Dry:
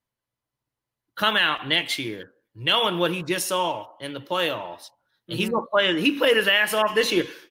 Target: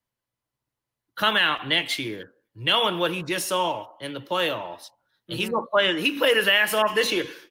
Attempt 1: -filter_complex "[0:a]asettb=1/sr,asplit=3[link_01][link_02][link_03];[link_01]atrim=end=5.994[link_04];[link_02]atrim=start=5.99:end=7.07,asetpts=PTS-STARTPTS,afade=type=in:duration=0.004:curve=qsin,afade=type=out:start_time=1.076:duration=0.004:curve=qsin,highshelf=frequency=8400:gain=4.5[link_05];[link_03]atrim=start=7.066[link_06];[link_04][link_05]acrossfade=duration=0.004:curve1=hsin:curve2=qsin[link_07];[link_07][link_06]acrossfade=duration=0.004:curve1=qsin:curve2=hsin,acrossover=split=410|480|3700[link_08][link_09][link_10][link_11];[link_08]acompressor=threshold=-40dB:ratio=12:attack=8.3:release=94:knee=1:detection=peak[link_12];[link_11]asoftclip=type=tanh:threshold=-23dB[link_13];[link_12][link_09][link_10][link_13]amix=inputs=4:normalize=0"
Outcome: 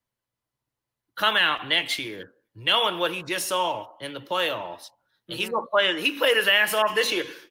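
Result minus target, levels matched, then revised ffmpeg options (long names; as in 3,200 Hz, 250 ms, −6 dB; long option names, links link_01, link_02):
downward compressor: peak gain reduction +8.5 dB
-filter_complex "[0:a]asettb=1/sr,asplit=3[link_01][link_02][link_03];[link_01]atrim=end=5.994[link_04];[link_02]atrim=start=5.99:end=7.07,asetpts=PTS-STARTPTS,afade=type=in:duration=0.004:curve=qsin,afade=type=out:start_time=1.076:duration=0.004:curve=qsin,highshelf=frequency=8400:gain=4.5[link_05];[link_03]atrim=start=7.066[link_06];[link_04][link_05]acrossfade=duration=0.004:curve1=hsin:curve2=qsin[link_07];[link_07][link_06]acrossfade=duration=0.004:curve1=qsin:curve2=hsin,acrossover=split=410|480|3700[link_08][link_09][link_10][link_11];[link_08]acompressor=threshold=-30.5dB:ratio=12:attack=8.3:release=94:knee=1:detection=peak[link_12];[link_11]asoftclip=type=tanh:threshold=-23dB[link_13];[link_12][link_09][link_10][link_13]amix=inputs=4:normalize=0"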